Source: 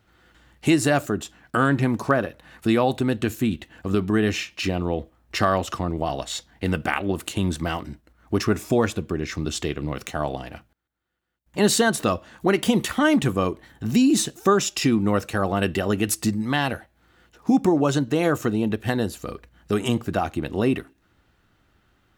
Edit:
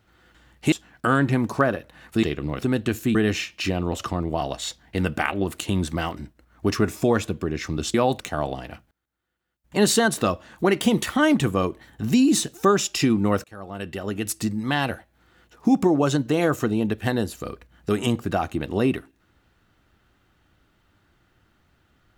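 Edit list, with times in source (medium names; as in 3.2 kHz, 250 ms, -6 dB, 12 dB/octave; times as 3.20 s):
0.72–1.22 s: delete
2.73–2.99 s: swap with 9.62–10.02 s
3.51–4.14 s: delete
4.91–5.60 s: delete
15.26–16.68 s: fade in linear, from -23 dB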